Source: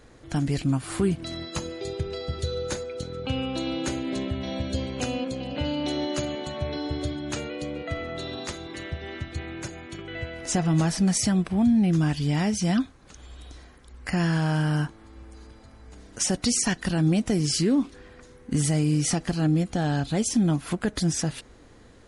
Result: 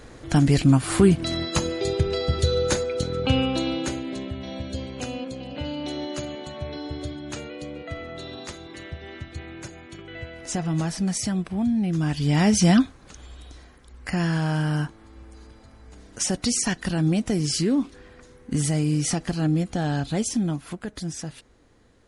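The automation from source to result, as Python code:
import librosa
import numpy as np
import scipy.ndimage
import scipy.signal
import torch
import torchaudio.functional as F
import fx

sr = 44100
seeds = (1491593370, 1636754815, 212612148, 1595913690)

y = fx.gain(x, sr, db=fx.line((3.34, 7.5), (4.17, -3.0), (11.93, -3.0), (12.58, 8.0), (13.46, 0.0), (20.2, 0.0), (20.81, -7.0)))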